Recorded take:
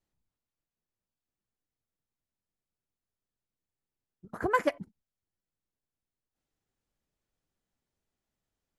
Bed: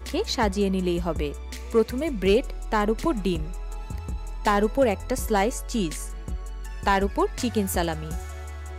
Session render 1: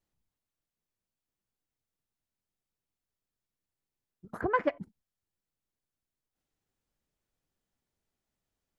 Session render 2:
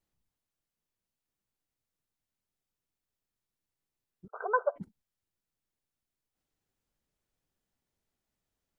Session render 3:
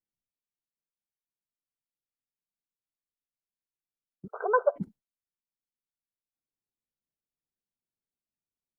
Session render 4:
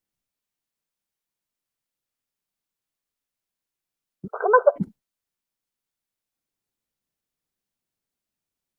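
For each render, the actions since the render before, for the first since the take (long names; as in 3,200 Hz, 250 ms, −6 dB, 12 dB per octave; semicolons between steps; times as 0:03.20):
0:04.41–0:04.81: high-frequency loss of the air 300 metres
0:04.28–0:04.76: linear-phase brick-wall band-pass 390–1,600 Hz
noise gate with hold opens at −51 dBFS; parametric band 250 Hz +9 dB 2.9 octaves
level +8 dB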